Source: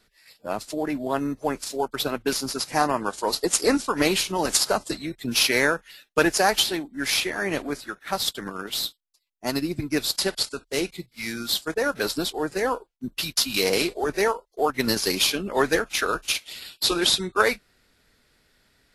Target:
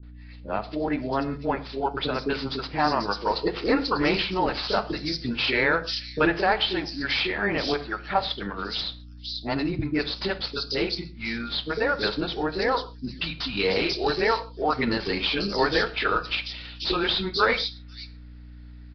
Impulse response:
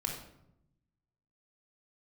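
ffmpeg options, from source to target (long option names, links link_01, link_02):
-filter_complex "[0:a]asettb=1/sr,asplit=3[link_01][link_02][link_03];[link_01]atrim=end=7.644[link_04];[link_02]atrim=start=7.64:end=8.2,asetpts=PTS-STARTPTS,afade=type=in:duration=0.004:curve=qsin,afade=type=out:start_time=0.556:duration=0.004:curve=qsin,equalizer=frequency=720:width=1.2:gain=8.5[link_05];[link_03]atrim=start=8.196[link_06];[link_04][link_05]acrossfade=duration=0.004:curve1=hsin:curve2=qsin[link_07];[link_07][link_06]acrossfade=duration=0.004:curve1=qsin:curve2=hsin,asplit=2[link_08][link_09];[link_09]alimiter=limit=-13.5dB:level=0:latency=1:release=25,volume=3dB[link_10];[link_08][link_10]amix=inputs=2:normalize=0,aeval=exprs='val(0)+0.0141*(sin(2*PI*60*n/s)+sin(2*PI*2*60*n/s)/2+sin(2*PI*3*60*n/s)/3+sin(2*PI*4*60*n/s)/4+sin(2*PI*5*60*n/s)/5)':channel_layout=same,acrossover=split=410|4200[link_11][link_12][link_13];[link_12]adelay=30[link_14];[link_13]adelay=520[link_15];[link_11][link_14][link_15]amix=inputs=3:normalize=0,asplit=2[link_16][link_17];[1:a]atrim=start_sample=2205,atrim=end_sample=6615[link_18];[link_17][link_18]afir=irnorm=-1:irlink=0,volume=-10dB[link_19];[link_16][link_19]amix=inputs=2:normalize=0,aresample=11025,aresample=44100,volume=-8dB"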